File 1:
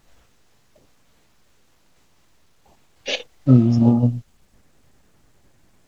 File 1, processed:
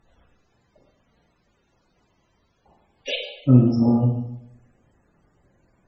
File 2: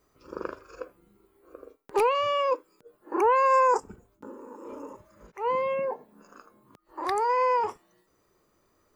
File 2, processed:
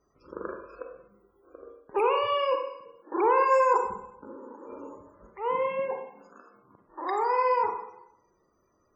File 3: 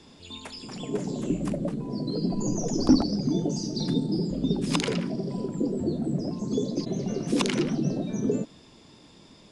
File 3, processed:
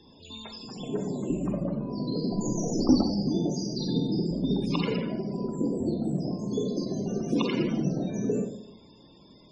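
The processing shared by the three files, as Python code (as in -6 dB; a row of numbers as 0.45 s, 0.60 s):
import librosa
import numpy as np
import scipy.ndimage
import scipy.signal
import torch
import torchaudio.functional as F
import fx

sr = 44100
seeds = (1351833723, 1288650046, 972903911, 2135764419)

y = fx.rev_schroeder(x, sr, rt60_s=0.82, comb_ms=32, drr_db=3.0)
y = fx.spec_topn(y, sr, count=64)
y = fx.cheby_harmonics(y, sr, harmonics=(2, 3, 5), levels_db=(-44, -29, -37), full_scale_db=0.5)
y = y * librosa.db_to_amplitude(-2.0)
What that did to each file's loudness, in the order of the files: -2.0 LU, -1.0 LU, -1.0 LU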